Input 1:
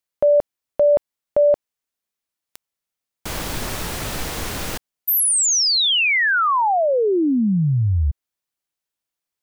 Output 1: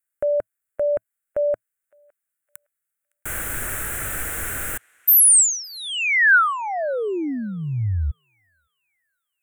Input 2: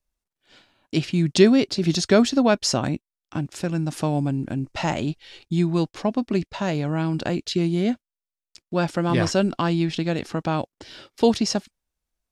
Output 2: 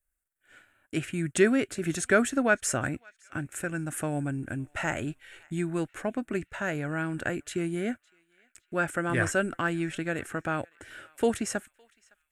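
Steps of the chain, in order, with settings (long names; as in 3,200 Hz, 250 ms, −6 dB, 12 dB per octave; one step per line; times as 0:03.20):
drawn EQ curve 110 Hz 0 dB, 180 Hz −8 dB, 290 Hz −3 dB, 640 Hz −2 dB, 1,000 Hz −7 dB, 1,500 Hz +10 dB, 2,600 Hz −1 dB, 4,800 Hz −18 dB, 8,000 Hz +9 dB
on a send: feedback echo with a band-pass in the loop 561 ms, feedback 45%, band-pass 2,900 Hz, level −24 dB
on the sum: level −4 dB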